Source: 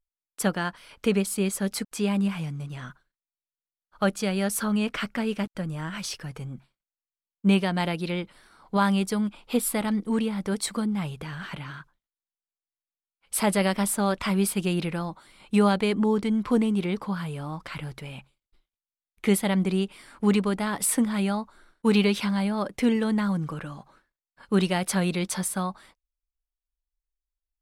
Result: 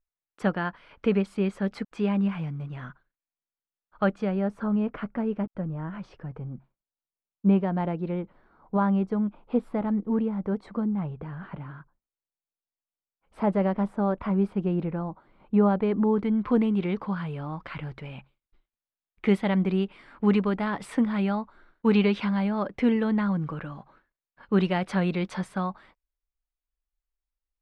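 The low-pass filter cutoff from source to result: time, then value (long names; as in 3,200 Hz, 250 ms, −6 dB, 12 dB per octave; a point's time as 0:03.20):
0:04.03 2,100 Hz
0:04.44 1,000 Hz
0:15.66 1,000 Hz
0:16.59 2,500 Hz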